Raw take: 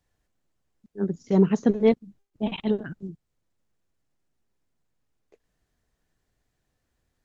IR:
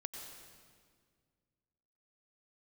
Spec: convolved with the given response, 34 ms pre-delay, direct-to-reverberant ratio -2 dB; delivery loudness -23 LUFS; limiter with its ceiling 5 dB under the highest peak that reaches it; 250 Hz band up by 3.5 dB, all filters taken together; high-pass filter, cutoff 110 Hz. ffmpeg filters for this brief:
-filter_complex "[0:a]highpass=110,equalizer=f=250:t=o:g=5,alimiter=limit=-10.5dB:level=0:latency=1,asplit=2[a][b];[1:a]atrim=start_sample=2205,adelay=34[c];[b][c]afir=irnorm=-1:irlink=0,volume=4dB[d];[a][d]amix=inputs=2:normalize=0,volume=-2dB"

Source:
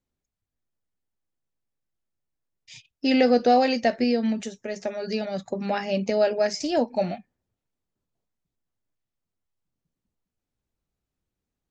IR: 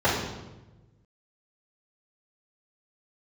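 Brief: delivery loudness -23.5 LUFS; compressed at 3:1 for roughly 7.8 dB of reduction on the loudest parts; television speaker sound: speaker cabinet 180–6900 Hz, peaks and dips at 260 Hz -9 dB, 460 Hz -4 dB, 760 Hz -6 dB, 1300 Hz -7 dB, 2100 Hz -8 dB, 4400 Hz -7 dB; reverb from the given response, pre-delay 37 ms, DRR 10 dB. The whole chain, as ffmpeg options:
-filter_complex "[0:a]acompressor=threshold=-25dB:ratio=3,asplit=2[a][b];[1:a]atrim=start_sample=2205,adelay=37[c];[b][c]afir=irnorm=-1:irlink=0,volume=-28dB[d];[a][d]amix=inputs=2:normalize=0,highpass=f=180:w=0.5412,highpass=f=180:w=1.3066,equalizer=f=260:t=q:w=4:g=-9,equalizer=f=460:t=q:w=4:g=-4,equalizer=f=760:t=q:w=4:g=-6,equalizer=f=1.3k:t=q:w=4:g=-7,equalizer=f=2.1k:t=q:w=4:g=-8,equalizer=f=4.4k:t=q:w=4:g=-7,lowpass=f=6.9k:w=0.5412,lowpass=f=6.9k:w=1.3066,volume=9dB"

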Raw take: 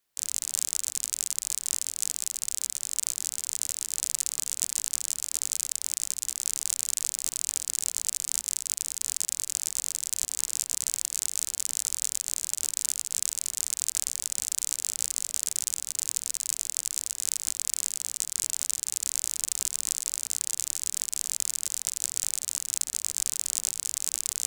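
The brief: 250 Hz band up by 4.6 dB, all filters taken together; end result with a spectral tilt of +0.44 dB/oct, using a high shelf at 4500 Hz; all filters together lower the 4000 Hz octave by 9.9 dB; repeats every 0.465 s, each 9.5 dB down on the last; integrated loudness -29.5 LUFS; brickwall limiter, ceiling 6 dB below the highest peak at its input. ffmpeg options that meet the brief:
-af "equalizer=f=250:t=o:g=6,equalizer=f=4k:t=o:g=-7.5,highshelf=f=4.5k:g=-9,alimiter=limit=-18.5dB:level=0:latency=1,aecho=1:1:465|930|1395|1860:0.335|0.111|0.0365|0.012,volume=9.5dB"

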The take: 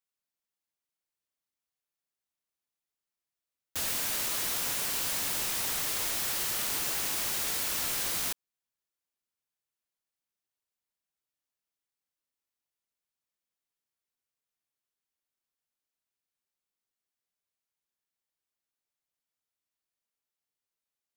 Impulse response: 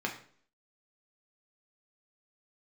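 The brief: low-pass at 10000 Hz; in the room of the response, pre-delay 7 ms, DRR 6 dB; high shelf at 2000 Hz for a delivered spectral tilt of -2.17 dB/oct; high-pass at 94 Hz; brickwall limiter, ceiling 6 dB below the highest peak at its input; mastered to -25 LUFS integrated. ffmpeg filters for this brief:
-filter_complex "[0:a]highpass=94,lowpass=10k,highshelf=f=2k:g=-6.5,alimiter=level_in=8.5dB:limit=-24dB:level=0:latency=1,volume=-8.5dB,asplit=2[a][b];[1:a]atrim=start_sample=2205,adelay=7[c];[b][c]afir=irnorm=-1:irlink=0,volume=-11.5dB[d];[a][d]amix=inputs=2:normalize=0,volume=15dB"

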